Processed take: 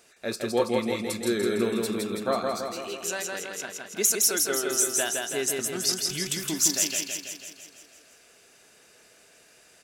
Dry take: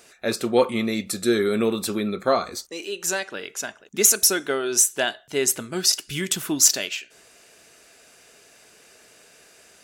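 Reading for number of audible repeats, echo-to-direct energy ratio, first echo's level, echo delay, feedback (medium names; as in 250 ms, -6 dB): 7, -1.0 dB, -3.0 dB, 164 ms, 59%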